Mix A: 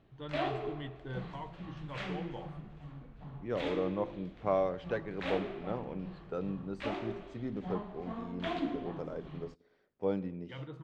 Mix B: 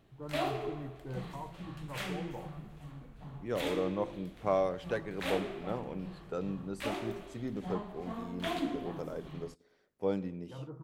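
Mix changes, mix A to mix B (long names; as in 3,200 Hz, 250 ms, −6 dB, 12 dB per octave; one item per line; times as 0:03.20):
first voice: add inverse Chebyshev low-pass filter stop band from 4,100 Hz, stop band 60 dB
master: remove high-frequency loss of the air 160 metres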